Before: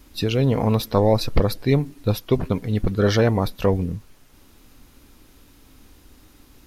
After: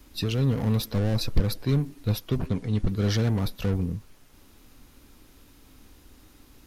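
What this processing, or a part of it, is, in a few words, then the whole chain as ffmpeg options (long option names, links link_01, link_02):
one-band saturation: -filter_complex "[0:a]asettb=1/sr,asplit=3[link_01][link_02][link_03];[link_01]atrim=end=2.464[link_04];[link_02]atrim=start=2.46:end=2.89,asetpts=PTS-STARTPTS,afade=type=in:duration=0.004:curve=qsin,afade=type=out:start_time=0.426:duration=0.004:curve=qsin,lowpass=frequency=10000:width=0.5412,lowpass=frequency=10000:width=1.3066[link_05];[link_03]atrim=start=2.886[link_06];[link_04][link_05]acrossfade=duration=0.004:curve1=hsin:curve2=qsin[link_07];[link_07][link_06]acrossfade=duration=0.004:curve1=qsin:curve2=hsin,acrossover=split=270|3500[link_08][link_09][link_10];[link_09]asoftclip=type=tanh:threshold=-31dB[link_11];[link_08][link_11][link_10]amix=inputs=3:normalize=0,volume=-2.5dB"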